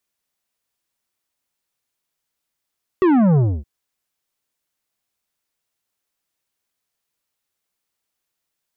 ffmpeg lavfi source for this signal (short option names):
-f lavfi -i "aevalsrc='0.237*clip((0.62-t)/0.27,0,1)*tanh(3.35*sin(2*PI*390*0.62/log(65/390)*(exp(log(65/390)*t/0.62)-1)))/tanh(3.35)':d=0.62:s=44100"